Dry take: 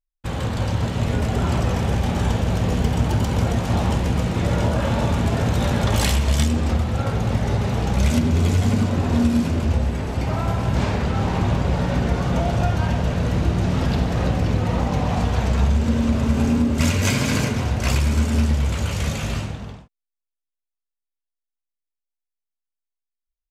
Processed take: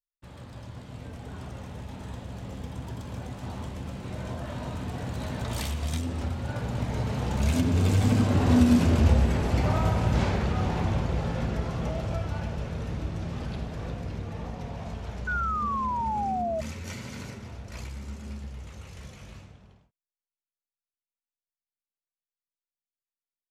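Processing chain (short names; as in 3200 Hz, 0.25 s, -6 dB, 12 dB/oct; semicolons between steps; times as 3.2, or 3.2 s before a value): Doppler pass-by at 9.08, 25 m/s, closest 23 m; painted sound fall, 15.27–16.61, 630–1500 Hz -29 dBFS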